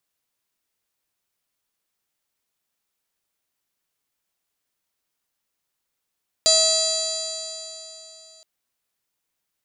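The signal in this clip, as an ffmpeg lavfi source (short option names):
-f lavfi -i "aevalsrc='0.0891*pow(10,-3*t/3.35)*sin(2*PI*640.74*t)+0.015*pow(10,-3*t/3.35)*sin(2*PI*1285.87*t)+0.0119*pow(10,-3*t/3.35)*sin(2*PI*1939.77*t)+0.0119*pow(10,-3*t/3.35)*sin(2*PI*2606.68*t)+0.0237*pow(10,-3*t/3.35)*sin(2*PI*3290.71*t)+0.1*pow(10,-3*t/3.35)*sin(2*PI*3995.81*t)+0.141*pow(10,-3*t/3.35)*sin(2*PI*4725.71*t)+0.02*pow(10,-3*t/3.35)*sin(2*PI*5483.9*t)+0.0473*pow(10,-3*t/3.35)*sin(2*PI*6273.64*t)+0.126*pow(10,-3*t/3.35)*sin(2*PI*7097.94*t)+0.0158*pow(10,-3*t/3.35)*sin(2*PI*7959.56*t)+0.0355*pow(10,-3*t/3.35)*sin(2*PI*8861*t)+0.01*pow(10,-3*t/3.35)*sin(2*PI*9804.55*t)+0.01*pow(10,-3*t/3.35)*sin(2*PI*10792.24*t)':d=1.97:s=44100"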